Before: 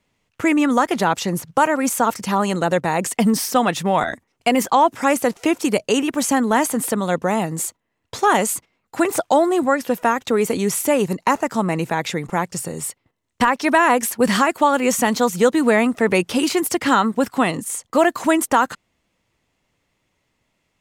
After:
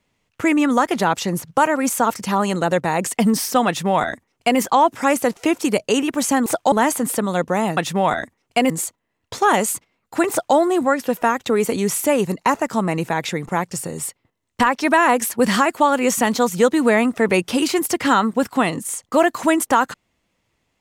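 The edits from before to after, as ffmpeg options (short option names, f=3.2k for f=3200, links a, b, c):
-filter_complex "[0:a]asplit=5[a][b][c][d][e];[a]atrim=end=6.462[f];[b]atrim=start=9.108:end=9.372[g];[c]atrim=start=6.458:end=7.512[h];[d]atrim=start=3.668:end=4.602[i];[e]atrim=start=7.508[j];[f][g]acrossfade=d=0.004:c1=hsin:c2=hsin[k];[k][h]acrossfade=d=0.004:c1=hsin:c2=hsin[l];[l][i]acrossfade=d=0.004:c1=hsin:c2=hsin[m];[m][j]acrossfade=d=0.004:c1=hsin:c2=hsin"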